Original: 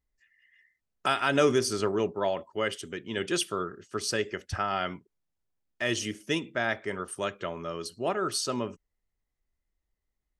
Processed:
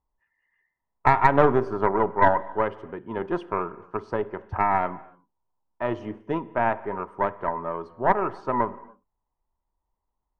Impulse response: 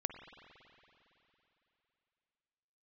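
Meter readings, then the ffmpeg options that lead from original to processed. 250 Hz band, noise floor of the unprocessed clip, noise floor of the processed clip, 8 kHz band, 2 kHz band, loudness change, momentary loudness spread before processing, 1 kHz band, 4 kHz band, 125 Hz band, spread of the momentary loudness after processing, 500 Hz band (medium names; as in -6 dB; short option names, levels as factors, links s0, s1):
+2.5 dB, -83 dBFS, -82 dBFS, under -25 dB, +1.5 dB, +5.0 dB, 10 LU, +11.0 dB, under -15 dB, +5.5 dB, 13 LU, +4.0 dB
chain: -filter_complex "[0:a]lowpass=f=950:t=q:w=8.4,aeval=exprs='0.473*(cos(1*acos(clip(val(0)/0.473,-1,1)))-cos(1*PI/2))+0.211*(cos(2*acos(clip(val(0)/0.473,-1,1)))-cos(2*PI/2))+0.0211*(cos(6*acos(clip(val(0)/0.473,-1,1)))-cos(6*PI/2))+0.00841*(cos(8*acos(clip(val(0)/0.473,-1,1)))-cos(8*PI/2))':c=same,asplit=2[s0][s1];[1:a]atrim=start_sample=2205,afade=t=out:st=0.35:d=0.01,atrim=end_sample=15876[s2];[s1][s2]afir=irnorm=-1:irlink=0,volume=0.422[s3];[s0][s3]amix=inputs=2:normalize=0,volume=0.794"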